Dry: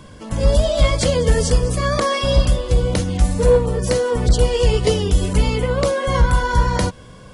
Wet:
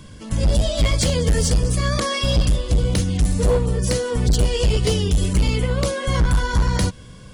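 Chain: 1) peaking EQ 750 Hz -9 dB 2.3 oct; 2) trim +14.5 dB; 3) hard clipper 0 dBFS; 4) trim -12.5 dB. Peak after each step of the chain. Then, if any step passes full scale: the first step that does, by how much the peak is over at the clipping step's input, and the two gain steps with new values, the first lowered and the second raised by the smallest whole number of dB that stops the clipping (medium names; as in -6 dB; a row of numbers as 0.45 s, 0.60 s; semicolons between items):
-5.0 dBFS, +9.5 dBFS, 0.0 dBFS, -12.5 dBFS; step 2, 9.5 dB; step 2 +4.5 dB, step 4 -2.5 dB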